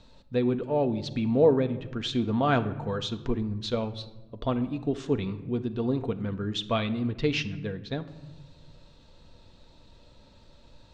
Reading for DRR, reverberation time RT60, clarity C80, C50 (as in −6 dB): 8.0 dB, 1.0 s, 17.0 dB, 14.5 dB